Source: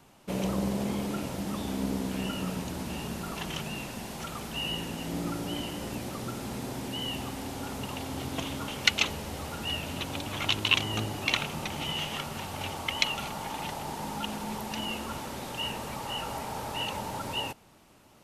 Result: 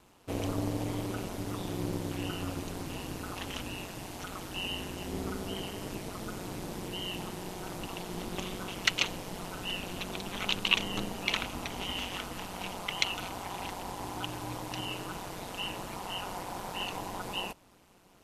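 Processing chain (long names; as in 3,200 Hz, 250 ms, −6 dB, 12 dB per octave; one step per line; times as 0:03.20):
ring modulation 93 Hz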